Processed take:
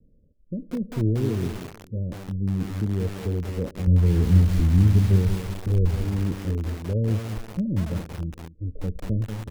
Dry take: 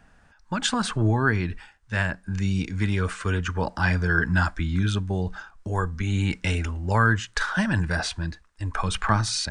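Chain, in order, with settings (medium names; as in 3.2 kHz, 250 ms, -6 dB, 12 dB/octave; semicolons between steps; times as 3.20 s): steep low-pass 560 Hz 96 dB/octave; 3.87–6.01 s: bass shelf 160 Hz +11.5 dB; feedback delay 225 ms, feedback 35%, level -17 dB; bit-crushed delay 188 ms, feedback 55%, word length 5-bit, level -7 dB; trim -1 dB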